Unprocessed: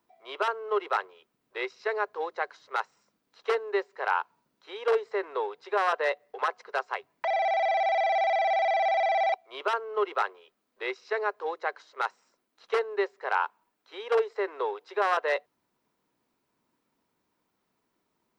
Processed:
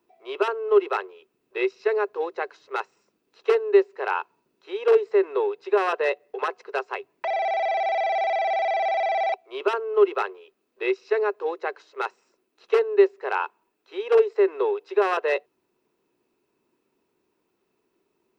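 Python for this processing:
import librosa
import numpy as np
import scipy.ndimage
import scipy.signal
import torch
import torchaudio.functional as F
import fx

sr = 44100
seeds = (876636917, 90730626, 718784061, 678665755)

y = fx.small_body(x, sr, hz=(380.0, 2600.0), ring_ms=30, db=13)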